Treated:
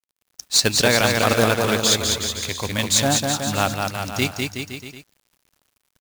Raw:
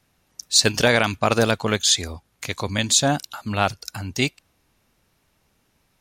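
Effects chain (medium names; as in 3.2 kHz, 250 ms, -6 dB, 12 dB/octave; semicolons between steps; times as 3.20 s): bouncing-ball echo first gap 200 ms, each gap 0.85×, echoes 5; companded quantiser 4-bit; trim -1 dB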